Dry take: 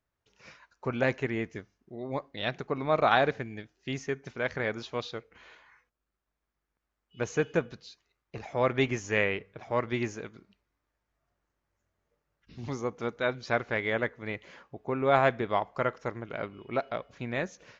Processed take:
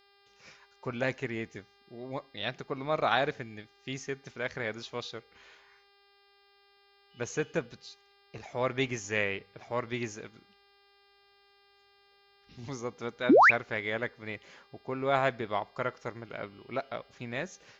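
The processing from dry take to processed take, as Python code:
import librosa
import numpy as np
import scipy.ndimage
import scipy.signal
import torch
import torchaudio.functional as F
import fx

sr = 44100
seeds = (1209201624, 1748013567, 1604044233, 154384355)

y = fx.high_shelf(x, sr, hz=3900.0, db=9.0)
y = fx.dmg_buzz(y, sr, base_hz=400.0, harmonics=13, level_db=-60.0, tilt_db=-2, odd_only=False)
y = fx.spec_paint(y, sr, seeds[0], shape='rise', start_s=13.29, length_s=0.22, low_hz=220.0, high_hz=2700.0, level_db=-13.0)
y = y * 10.0 ** (-4.5 / 20.0)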